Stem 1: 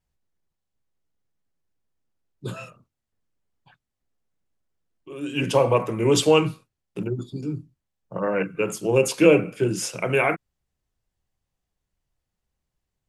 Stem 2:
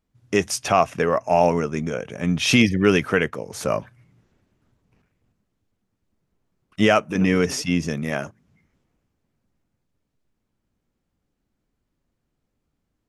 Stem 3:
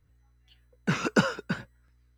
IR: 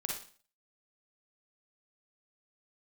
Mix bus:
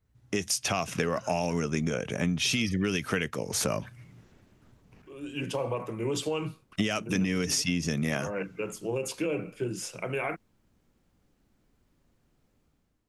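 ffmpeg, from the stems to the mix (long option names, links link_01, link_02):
-filter_complex "[0:a]alimiter=limit=-11.5dB:level=0:latency=1:release=53,volume=-8.5dB[link_01];[1:a]acrossover=split=300|3000[link_02][link_03][link_04];[link_03]acompressor=threshold=-38dB:ratio=1.5[link_05];[link_02][link_05][link_04]amix=inputs=3:normalize=0,adynamicequalizer=threshold=0.02:dfrequency=1700:dqfactor=0.7:tfrequency=1700:tqfactor=0.7:attack=5:release=100:ratio=0.375:range=3.5:mode=boostabove:tftype=highshelf,volume=-3.5dB,asplit=2[link_06][link_07];[2:a]acompressor=threshold=-32dB:ratio=6,volume=-7dB[link_08];[link_07]apad=whole_len=95940[link_09];[link_08][link_09]sidechaincompress=threshold=-29dB:ratio=8:attack=16:release=1090[link_10];[link_06][link_10]amix=inputs=2:normalize=0,dynaudnorm=framelen=600:gausssize=3:maxgain=10.5dB,alimiter=limit=-7.5dB:level=0:latency=1:release=146,volume=0dB[link_11];[link_01][link_11]amix=inputs=2:normalize=0,acompressor=threshold=-25dB:ratio=6"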